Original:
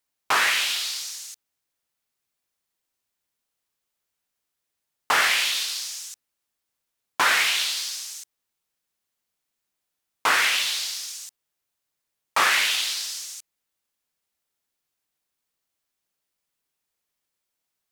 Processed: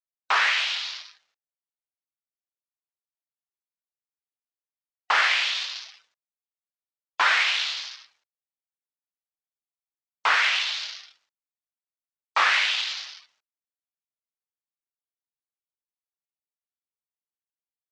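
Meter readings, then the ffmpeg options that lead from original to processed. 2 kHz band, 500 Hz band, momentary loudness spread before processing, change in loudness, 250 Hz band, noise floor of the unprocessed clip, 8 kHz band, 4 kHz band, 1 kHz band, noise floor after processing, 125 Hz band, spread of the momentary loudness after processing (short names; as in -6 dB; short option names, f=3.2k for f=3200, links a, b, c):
0.0 dB, -4.5 dB, 18 LU, -0.5 dB, under -10 dB, -82 dBFS, -12.0 dB, -1.5 dB, -0.5 dB, under -85 dBFS, n/a, 17 LU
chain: -filter_complex "[0:a]adynamicsmooth=sensitivity=7:basefreq=990,acrossover=split=560 5600:gain=0.178 1 0.126[a][b][c];[a][b][c]amix=inputs=3:normalize=0,afftdn=nr=14:nf=-49"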